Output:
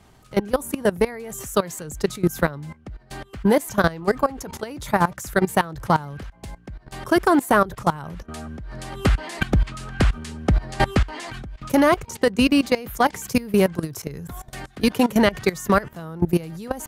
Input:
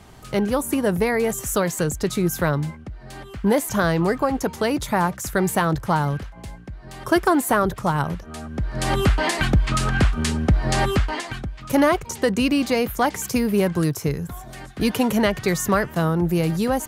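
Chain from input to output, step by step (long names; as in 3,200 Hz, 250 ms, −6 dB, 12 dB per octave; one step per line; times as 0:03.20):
output level in coarse steps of 19 dB
level +4 dB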